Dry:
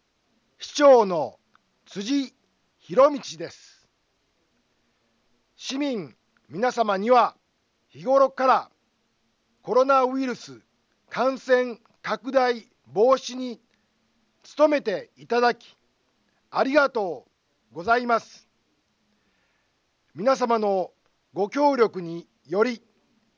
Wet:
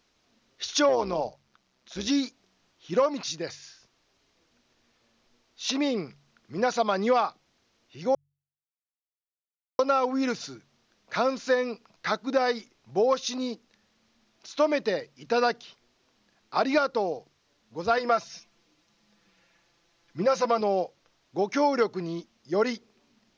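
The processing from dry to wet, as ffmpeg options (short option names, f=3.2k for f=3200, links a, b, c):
-filter_complex "[0:a]asettb=1/sr,asplit=3[a][b][c];[a]atrim=end=0.894[d];[b]atrim=start=0.89:end=2.07,asetpts=PTS-STARTPTS,afade=t=in:d=0.004:c=qsin,afade=t=out:st=1.176:d=0.004:c=qsin,tremolo=f=130:d=0.667[e];[c]atrim=start=2.066[f];[d][e]acrossfade=d=0.004:c1=hsin:c2=qsin[g];[g][f]acrossfade=d=0.004:c1=qsin:c2=hsin,asettb=1/sr,asplit=3[h][i][j];[h]atrim=end=17.974[k];[i]atrim=start=17.97:end=20.61,asetpts=PTS-STARTPTS,afade=t=in:d=0.004:c=qsin,afade=t=out:st=2.636:d=0.004:c=qsin,aecho=1:1:5.9:0.65,atrim=end_sample=116424[l];[j]atrim=start=20.606[m];[k][l]acrossfade=d=0.004:c1=hsin:c2=qsin[n];[n][m]acrossfade=d=0.004:c1=qsin:c2=hsin,asplit=3[o][p][q];[o]atrim=end=8.15,asetpts=PTS-STARTPTS,afade=t=out:st=8.146:d=0.004:c=hsin[r];[p]atrim=start=8.15:end=9.79,asetpts=PTS-STARTPTS,volume=0[s];[q]atrim=start=9.79,asetpts=PTS-STARTPTS,afade=t=in:d=0.004:c=hsin[t];[r][s][t]concat=n=3:v=0:a=1,equalizer=f=5.8k:t=o:w=2.1:g=3.5,bandreject=f=47.36:t=h:w=4,bandreject=f=94.72:t=h:w=4,bandreject=f=142.08:t=h:w=4,acompressor=threshold=-20dB:ratio=4"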